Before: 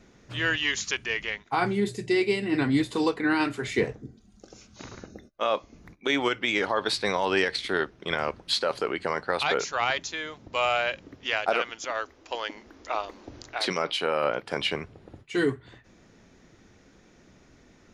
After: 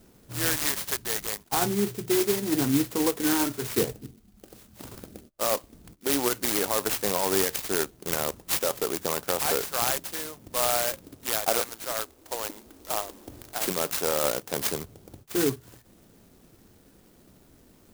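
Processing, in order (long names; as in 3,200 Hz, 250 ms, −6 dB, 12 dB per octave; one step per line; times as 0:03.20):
converter with an unsteady clock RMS 0.14 ms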